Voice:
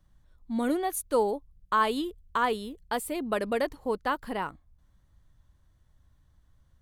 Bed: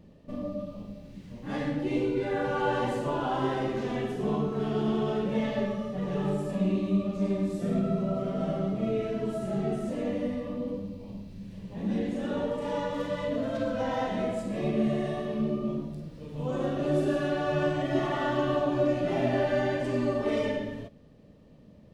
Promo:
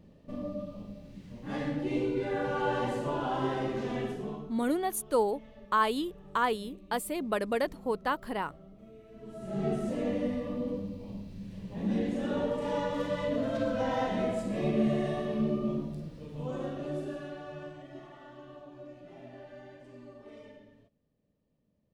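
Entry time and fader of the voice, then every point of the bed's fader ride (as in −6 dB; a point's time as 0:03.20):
4.00 s, −1.5 dB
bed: 0:04.10 −2.5 dB
0:04.69 −23.5 dB
0:09.04 −23.5 dB
0:09.65 −0.5 dB
0:16.06 −0.5 dB
0:18.20 −22 dB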